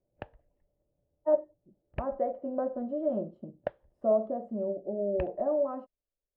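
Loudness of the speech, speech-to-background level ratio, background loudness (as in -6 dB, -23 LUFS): -31.5 LUFS, 13.0 dB, -44.5 LUFS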